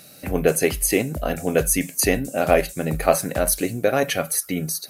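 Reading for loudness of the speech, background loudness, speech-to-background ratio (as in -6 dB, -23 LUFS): -21.5 LUFS, -36.0 LUFS, 14.5 dB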